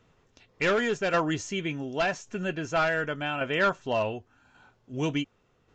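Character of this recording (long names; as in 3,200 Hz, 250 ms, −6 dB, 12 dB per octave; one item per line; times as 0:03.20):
tremolo saw down 0.88 Hz, depth 45%
Ogg Vorbis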